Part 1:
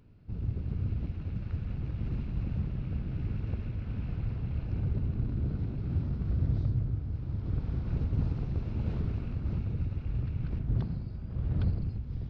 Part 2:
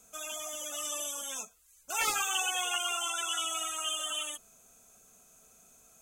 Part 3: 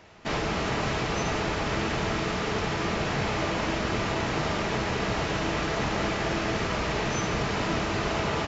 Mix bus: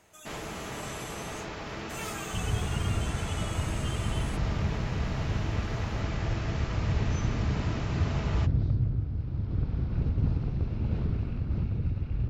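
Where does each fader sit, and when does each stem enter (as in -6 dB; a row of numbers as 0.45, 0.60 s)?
+2.5, -10.0, -10.0 dB; 2.05, 0.00, 0.00 s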